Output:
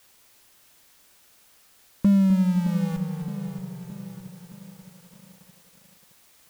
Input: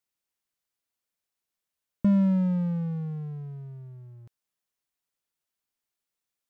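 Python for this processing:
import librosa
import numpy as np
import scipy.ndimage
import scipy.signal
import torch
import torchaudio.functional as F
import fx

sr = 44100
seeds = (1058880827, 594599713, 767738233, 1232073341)

p1 = fx.graphic_eq(x, sr, hz=(125, 250, 1000), db=(-8, 4, 6))
p2 = fx.env_lowpass_down(p1, sr, base_hz=600.0, full_db=-24.0)
p3 = fx.low_shelf(p2, sr, hz=310.0, db=3.0)
p4 = fx.schmitt(p3, sr, flips_db=-27.5)
p5 = p3 + (p4 * 10.0 ** (-5.0 / 20.0))
p6 = fx.dmg_noise_colour(p5, sr, seeds[0], colour='white', level_db=-58.0)
p7 = p6 + fx.echo_feedback(p6, sr, ms=257, feedback_pct=43, wet_db=-11.0, dry=0)
y = fx.echo_crushed(p7, sr, ms=618, feedback_pct=55, bits=8, wet_db=-11)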